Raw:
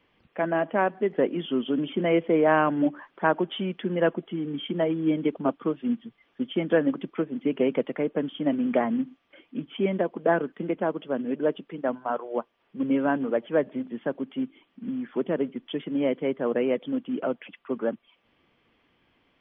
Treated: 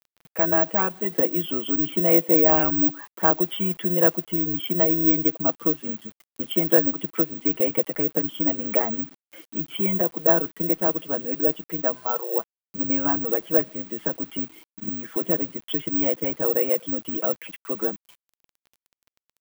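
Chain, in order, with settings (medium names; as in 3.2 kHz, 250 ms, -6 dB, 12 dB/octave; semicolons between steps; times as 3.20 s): high-pass 87 Hz 24 dB/octave; comb 6.1 ms, depth 72%; in parallel at +1.5 dB: compression 16:1, threshold -32 dBFS, peak gain reduction 21 dB; on the sum: bit crusher 8-bit; careless resampling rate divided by 2×, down none, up zero stuff; trim -4 dB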